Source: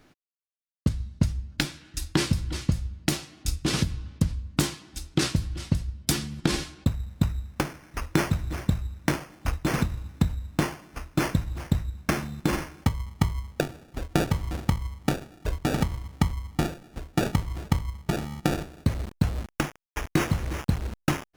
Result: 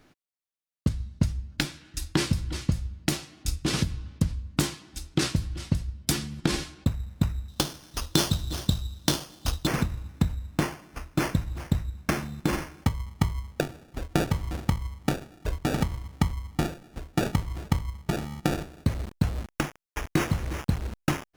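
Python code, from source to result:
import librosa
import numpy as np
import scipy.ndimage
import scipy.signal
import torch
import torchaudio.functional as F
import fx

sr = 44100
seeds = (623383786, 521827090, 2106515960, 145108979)

y = fx.high_shelf_res(x, sr, hz=2800.0, db=8.0, q=3.0, at=(7.48, 9.67))
y = y * 10.0 ** (-1.0 / 20.0)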